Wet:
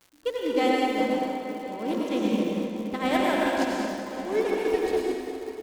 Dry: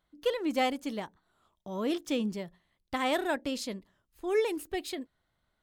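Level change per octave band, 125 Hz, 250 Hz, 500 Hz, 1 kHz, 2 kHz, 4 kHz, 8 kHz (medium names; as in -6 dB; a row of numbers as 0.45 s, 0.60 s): +6.5 dB, +7.5 dB, +6.5 dB, +7.5 dB, +6.0 dB, +3.0 dB, +2.0 dB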